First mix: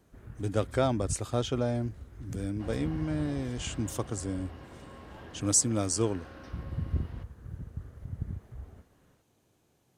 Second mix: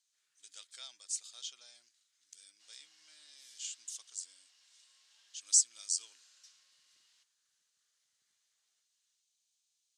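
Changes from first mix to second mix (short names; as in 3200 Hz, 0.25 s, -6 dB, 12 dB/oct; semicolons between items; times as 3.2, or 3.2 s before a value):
second sound: remove polynomial smoothing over 15 samples; master: add Butterworth band-pass 5700 Hz, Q 1.2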